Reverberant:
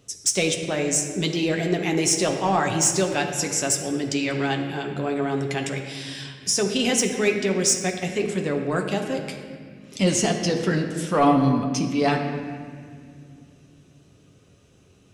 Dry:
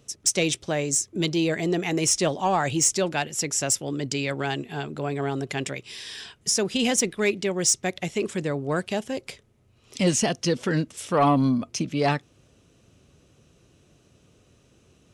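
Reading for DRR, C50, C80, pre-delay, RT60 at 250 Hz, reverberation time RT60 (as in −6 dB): 2.0 dB, 5.5 dB, 7.0 dB, 7 ms, 3.4 s, 2.1 s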